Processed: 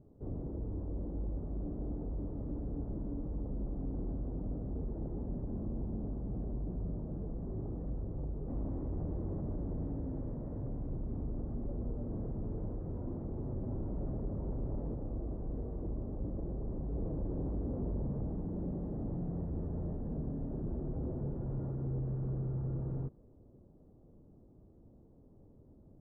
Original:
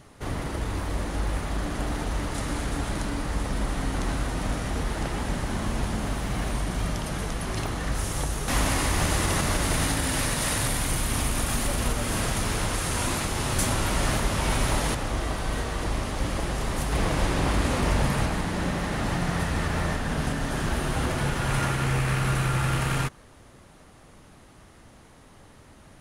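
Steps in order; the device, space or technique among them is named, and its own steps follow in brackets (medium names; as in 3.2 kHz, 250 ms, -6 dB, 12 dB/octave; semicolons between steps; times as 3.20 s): overdriven synthesiser ladder filter (saturation -23.5 dBFS, distortion -13 dB; four-pole ladder low-pass 570 Hz, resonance 20%); trim -2 dB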